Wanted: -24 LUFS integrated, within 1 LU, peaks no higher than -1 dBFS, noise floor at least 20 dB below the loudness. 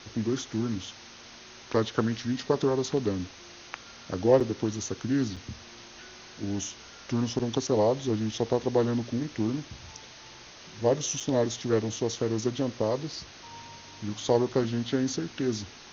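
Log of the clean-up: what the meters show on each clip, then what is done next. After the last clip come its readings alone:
dropouts 4; longest dropout 5.8 ms; noise floor -48 dBFS; noise floor target -49 dBFS; loudness -29.0 LUFS; peak level -8.5 dBFS; loudness target -24.0 LUFS
-> interpolate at 4.40/5.36/7.39/11.20 s, 5.8 ms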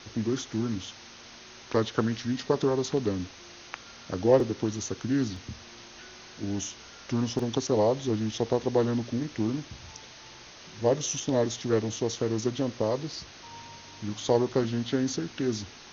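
dropouts 0; noise floor -48 dBFS; noise floor target -49 dBFS
-> noise print and reduce 6 dB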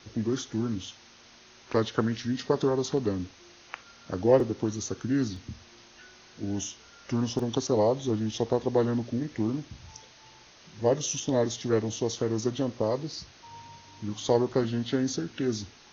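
noise floor -54 dBFS; loudness -29.0 LUFS; peak level -8.5 dBFS; loudness target -24.0 LUFS
-> trim +5 dB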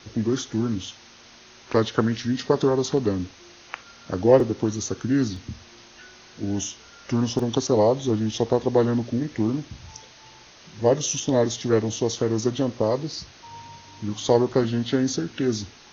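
loudness -24.0 LUFS; peak level -3.5 dBFS; noise floor -49 dBFS

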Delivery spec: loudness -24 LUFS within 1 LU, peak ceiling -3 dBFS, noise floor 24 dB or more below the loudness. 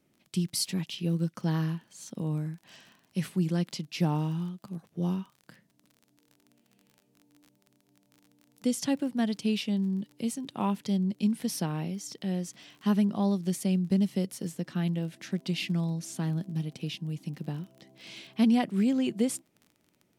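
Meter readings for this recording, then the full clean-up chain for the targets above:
tick rate 37 per s; loudness -30.5 LUFS; peak level -15.0 dBFS; loudness target -24.0 LUFS
-> de-click; trim +6.5 dB

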